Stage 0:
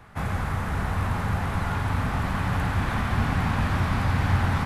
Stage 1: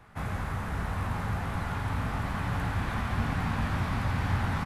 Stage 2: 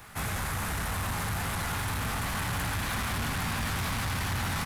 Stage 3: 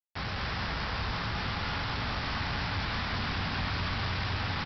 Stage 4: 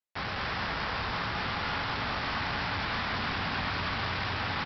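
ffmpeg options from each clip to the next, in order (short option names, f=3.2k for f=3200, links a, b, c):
-filter_complex "[0:a]asplit=2[a][b];[b]adelay=18,volume=-11dB[c];[a][c]amix=inputs=2:normalize=0,volume=-5.5dB"
-filter_complex "[0:a]asplit=2[a][b];[b]alimiter=level_in=2.5dB:limit=-24dB:level=0:latency=1,volume=-2.5dB,volume=-1dB[c];[a][c]amix=inputs=2:normalize=0,crystalizer=i=6:c=0,asoftclip=type=tanh:threshold=-24.5dB,volume=-2.5dB"
-af "alimiter=level_in=6.5dB:limit=-24dB:level=0:latency=1,volume=-6.5dB,aresample=11025,acrusher=bits=5:mix=0:aa=0.000001,aresample=44100,aecho=1:1:207:0.631,volume=-1dB"
-af "lowpass=f=3.6k:p=1,lowshelf=f=170:g=-10.5,volume=3.5dB"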